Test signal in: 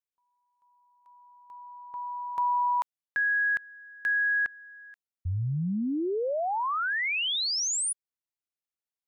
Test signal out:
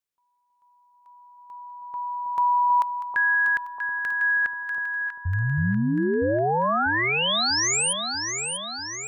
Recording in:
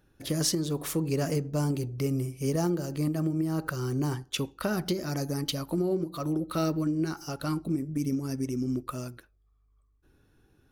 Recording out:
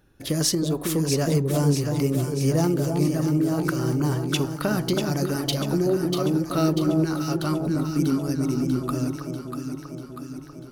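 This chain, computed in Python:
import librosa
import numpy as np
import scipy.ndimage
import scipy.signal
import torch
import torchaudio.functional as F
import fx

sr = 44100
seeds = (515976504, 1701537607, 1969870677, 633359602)

y = fx.echo_alternate(x, sr, ms=321, hz=980.0, feedback_pct=77, wet_db=-4.0)
y = F.gain(torch.from_numpy(y), 4.5).numpy()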